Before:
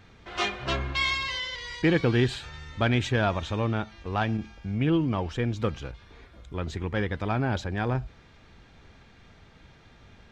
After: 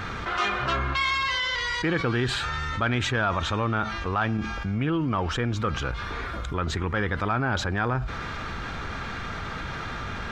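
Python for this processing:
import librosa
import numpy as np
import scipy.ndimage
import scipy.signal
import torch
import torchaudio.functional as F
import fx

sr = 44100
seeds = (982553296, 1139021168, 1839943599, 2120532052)

y = fx.peak_eq(x, sr, hz=1300.0, db=11.0, octaves=0.79)
y = fx.env_flatten(y, sr, amount_pct=70)
y = y * librosa.db_to_amplitude(-6.0)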